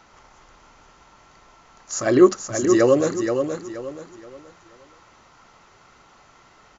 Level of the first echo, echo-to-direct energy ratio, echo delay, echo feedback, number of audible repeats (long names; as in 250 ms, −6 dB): −6.5 dB, −6.0 dB, 476 ms, 32%, 3